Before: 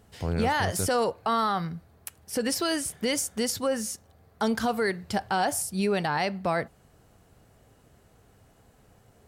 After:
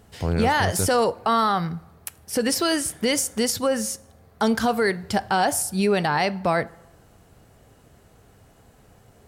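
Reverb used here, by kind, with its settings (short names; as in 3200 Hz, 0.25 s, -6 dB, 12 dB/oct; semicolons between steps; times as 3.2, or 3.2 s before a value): plate-style reverb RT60 1 s, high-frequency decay 0.6×, DRR 20 dB; gain +5 dB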